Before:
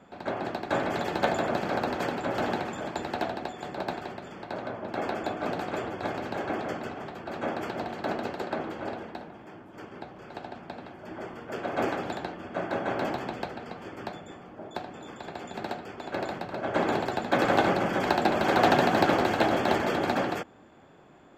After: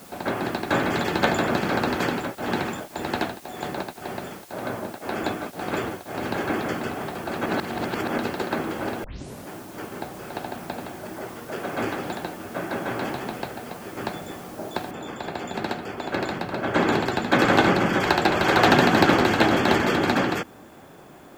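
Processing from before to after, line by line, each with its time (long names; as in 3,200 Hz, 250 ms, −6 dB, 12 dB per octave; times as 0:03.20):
0:02.10–0:06.39: tremolo along a rectified sine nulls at 1.9 Hz
0:07.46–0:08.18: reverse
0:09.04: tape start 0.46 s
0:11.07–0:13.96: flanger 1.8 Hz, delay 4.1 ms, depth 6.1 ms, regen +74%
0:14.91: noise floor change −57 dB −69 dB
0:17.98–0:18.68: parametric band 240 Hz −7.5 dB 0.58 octaves
whole clip: dynamic equaliser 650 Hz, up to −7 dB, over −40 dBFS, Q 1.5; level +8 dB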